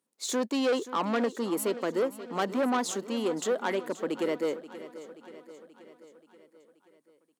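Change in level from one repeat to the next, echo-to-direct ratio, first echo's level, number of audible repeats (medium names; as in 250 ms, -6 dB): -4.5 dB, -13.0 dB, -15.0 dB, 5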